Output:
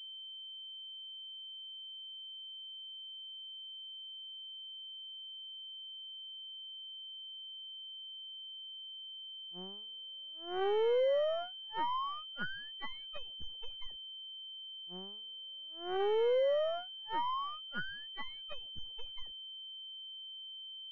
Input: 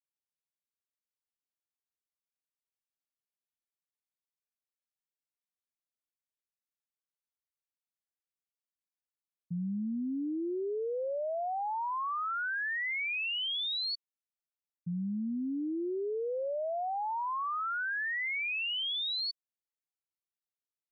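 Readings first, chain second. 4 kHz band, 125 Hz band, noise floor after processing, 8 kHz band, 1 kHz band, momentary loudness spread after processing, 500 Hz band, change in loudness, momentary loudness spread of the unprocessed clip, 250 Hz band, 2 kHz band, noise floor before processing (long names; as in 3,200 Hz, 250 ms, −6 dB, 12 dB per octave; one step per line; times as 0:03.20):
−1.5 dB, below −10 dB, −48 dBFS, can't be measured, −4.5 dB, 13 LU, +2.5 dB, −6.5 dB, 5 LU, −15.5 dB, −12.0 dB, below −85 dBFS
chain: lower of the sound and its delayed copy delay 1.9 ms
power curve on the samples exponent 2
noise gate −40 dBFS, range −40 dB
treble cut that deepens with the level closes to 810 Hz, closed at −35.5 dBFS
switching amplifier with a slow clock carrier 3,100 Hz
level +9.5 dB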